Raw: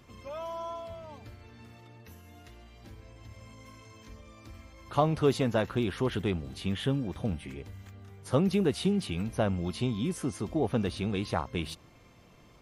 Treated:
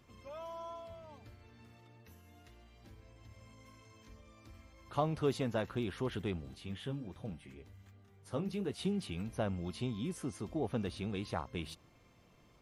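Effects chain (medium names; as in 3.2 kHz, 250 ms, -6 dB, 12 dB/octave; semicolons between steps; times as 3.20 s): 6.55–8.79 s: flange 1.3 Hz, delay 5 ms, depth 8.8 ms, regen -48%; trim -7.5 dB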